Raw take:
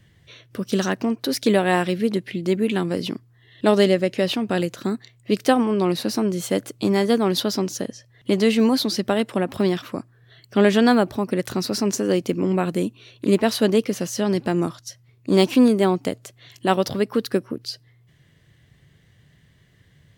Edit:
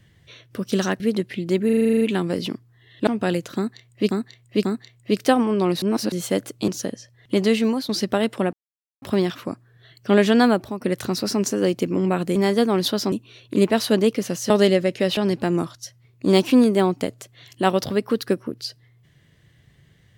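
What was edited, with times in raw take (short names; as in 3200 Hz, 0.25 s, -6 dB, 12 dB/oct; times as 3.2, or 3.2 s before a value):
1–1.97 cut
2.62 stutter 0.04 s, 10 plays
3.68–4.35 move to 14.21
4.85–5.39 loop, 3 plays
6.02–6.32 reverse
6.88–7.64 move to 12.83
8.31–8.85 fade out equal-power, to -11.5 dB
9.49 insert silence 0.49 s
10.97–11.28 fade out, to -8.5 dB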